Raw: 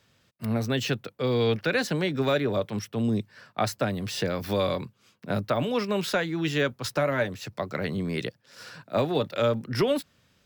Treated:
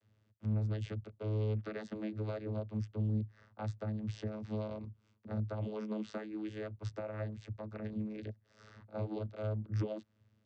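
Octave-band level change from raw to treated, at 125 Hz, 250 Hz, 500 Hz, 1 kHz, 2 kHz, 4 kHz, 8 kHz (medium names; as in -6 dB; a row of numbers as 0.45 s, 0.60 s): -5.0 dB, -11.0 dB, -15.5 dB, -18.5 dB, -22.0 dB, -25.0 dB, under -20 dB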